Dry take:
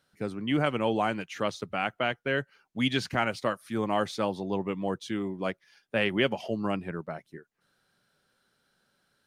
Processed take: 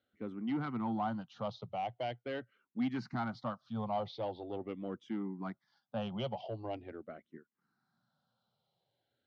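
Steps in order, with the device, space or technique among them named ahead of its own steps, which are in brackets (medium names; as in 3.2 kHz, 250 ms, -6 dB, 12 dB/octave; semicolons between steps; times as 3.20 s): barber-pole phaser into a guitar amplifier (barber-pole phaser -0.43 Hz; saturation -24 dBFS, distortion -15 dB; cabinet simulation 81–4100 Hz, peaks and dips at 120 Hz +7 dB, 230 Hz +5 dB, 420 Hz -4 dB, 770 Hz +5 dB, 1.7 kHz -8 dB, 2.5 kHz -9 dB); trim -5.5 dB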